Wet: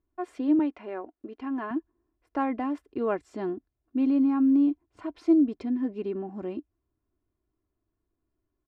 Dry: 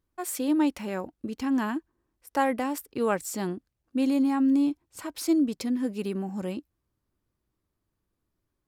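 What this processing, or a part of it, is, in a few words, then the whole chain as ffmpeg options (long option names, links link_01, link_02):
phone in a pocket: -filter_complex "[0:a]lowpass=3400,equalizer=frequency=320:width_type=o:width=2.5:gain=2.5,highshelf=frequency=2500:gain=-11,aecho=1:1:2.9:0.57,asettb=1/sr,asplit=3[link_01][link_02][link_03];[link_01]atrim=end=0.594[link_04];[link_02]atrim=start=0.59:end=1.71,asetpts=PTS-STARTPTS,afade=type=in:duration=0.004:curve=qsin,afade=type=out:start_time=1.116:duration=0.004:curve=qsin,bass=frequency=250:gain=-15,treble=frequency=4000:gain=-7[link_05];[link_03]atrim=start=1.706[link_06];[link_04][link_05]acrossfade=duration=0.004:curve1=hsin:curve2=qsin[link_07];[link_07][link_06]acrossfade=duration=0.004:curve1=qsin:curve2=hsin,volume=-3dB"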